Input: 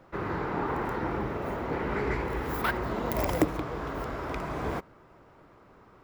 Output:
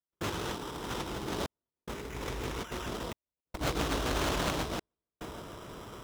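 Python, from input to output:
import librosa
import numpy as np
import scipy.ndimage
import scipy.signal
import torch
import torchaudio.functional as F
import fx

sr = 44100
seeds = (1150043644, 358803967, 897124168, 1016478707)

p1 = x + fx.echo_feedback(x, sr, ms=154, feedback_pct=50, wet_db=-7.0, dry=0)
p2 = fx.sample_hold(p1, sr, seeds[0], rate_hz=4400.0, jitter_pct=0)
p3 = fx.highpass(p2, sr, hz=43.0, slope=6)
p4 = fx.over_compress(p3, sr, threshold_db=-36.0, ratio=-0.5)
p5 = fx.low_shelf(p4, sr, hz=64.0, db=6.5)
p6 = fx.notch(p5, sr, hz=800.0, q=14.0)
p7 = fx.step_gate(p6, sr, bpm=72, pattern='.xxxxxx.', floor_db=-60.0, edge_ms=4.5)
p8 = fx.dynamic_eq(p7, sr, hz=4100.0, q=0.86, threshold_db=-50.0, ratio=4.0, max_db=5)
p9 = fx.doppler_dist(p8, sr, depth_ms=0.76)
y = F.gain(torch.from_numpy(p9), 2.5).numpy()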